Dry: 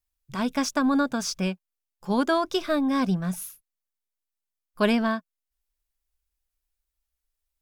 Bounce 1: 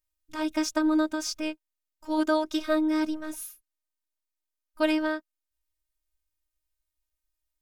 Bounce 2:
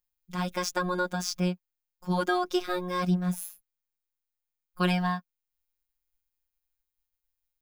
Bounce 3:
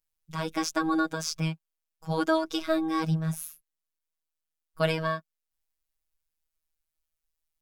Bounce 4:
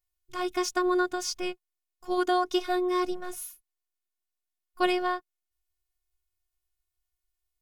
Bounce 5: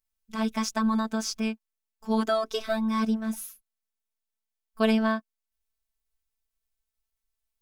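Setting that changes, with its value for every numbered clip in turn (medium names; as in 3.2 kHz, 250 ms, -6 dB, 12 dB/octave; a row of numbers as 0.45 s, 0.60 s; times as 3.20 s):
robot voice, frequency: 310 Hz, 180 Hz, 160 Hz, 360 Hz, 220 Hz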